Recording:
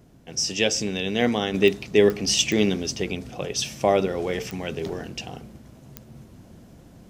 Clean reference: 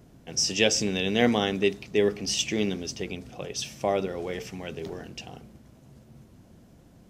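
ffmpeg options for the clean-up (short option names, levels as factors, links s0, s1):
-af "adeclick=t=4,asetnsamples=n=441:p=0,asendcmd='1.54 volume volume -6dB',volume=1"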